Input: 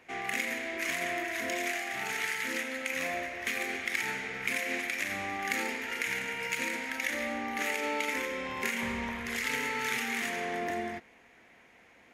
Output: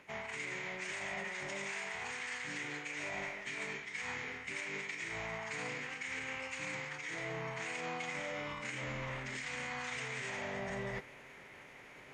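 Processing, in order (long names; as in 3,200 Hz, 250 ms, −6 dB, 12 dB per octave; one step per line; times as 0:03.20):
reversed playback
downward compressor 5 to 1, threshold −45 dBFS, peak gain reduction 17 dB
reversed playback
phase-vocoder pitch shift with formants kept −10 semitones
level +6.5 dB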